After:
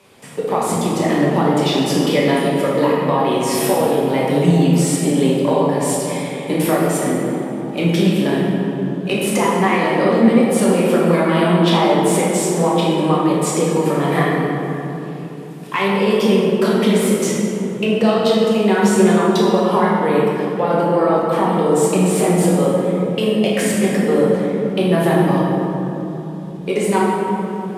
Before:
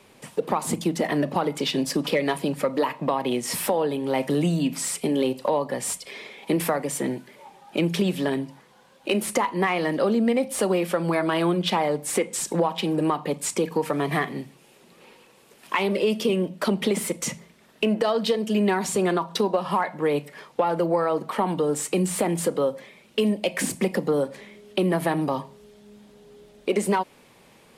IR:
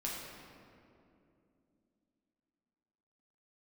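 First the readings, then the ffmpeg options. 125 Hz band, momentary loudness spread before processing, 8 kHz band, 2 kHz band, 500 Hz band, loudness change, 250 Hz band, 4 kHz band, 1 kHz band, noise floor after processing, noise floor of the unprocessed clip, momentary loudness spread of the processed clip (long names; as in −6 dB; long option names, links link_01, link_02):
+11.5 dB, 8 LU, +5.5 dB, +7.0 dB, +8.5 dB, +8.5 dB, +10.0 dB, +6.0 dB, +8.0 dB, −27 dBFS, −55 dBFS, 8 LU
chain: -filter_complex "[0:a]highpass=49[link_01];[1:a]atrim=start_sample=2205,asetrate=28665,aresample=44100[link_02];[link_01][link_02]afir=irnorm=-1:irlink=0,volume=2.5dB"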